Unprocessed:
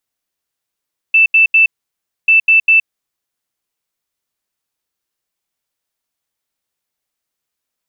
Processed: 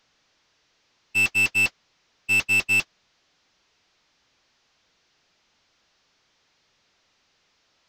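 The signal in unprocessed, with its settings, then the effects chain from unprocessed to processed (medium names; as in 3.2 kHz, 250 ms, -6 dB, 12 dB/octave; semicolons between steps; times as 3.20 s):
beep pattern sine 2.65 kHz, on 0.12 s, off 0.08 s, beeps 3, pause 0.62 s, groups 2, -5.5 dBFS
one-bit delta coder 32 kbps, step -17 dBFS; waveshaping leveller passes 2; gate -9 dBFS, range -51 dB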